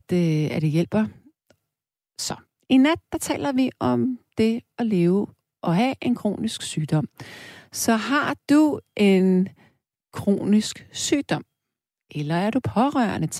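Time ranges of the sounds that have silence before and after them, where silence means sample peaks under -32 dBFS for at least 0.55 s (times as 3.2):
2.19–9.48
10.15–11.41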